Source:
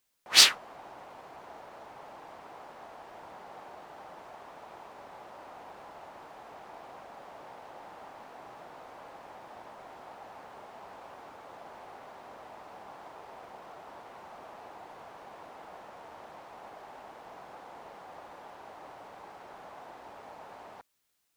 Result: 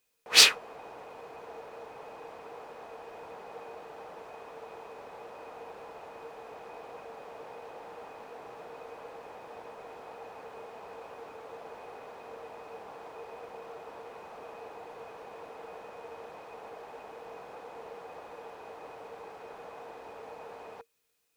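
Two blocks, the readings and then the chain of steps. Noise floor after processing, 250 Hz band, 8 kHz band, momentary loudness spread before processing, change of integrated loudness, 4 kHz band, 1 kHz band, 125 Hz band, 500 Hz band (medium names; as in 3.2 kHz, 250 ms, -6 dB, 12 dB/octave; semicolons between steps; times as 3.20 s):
-48 dBFS, +1.0 dB, 0.0 dB, 3 LU, -1.5 dB, 0.0 dB, 0.0 dB, 0.0 dB, +5.5 dB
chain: small resonant body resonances 460/2500 Hz, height 16 dB, ringing for 90 ms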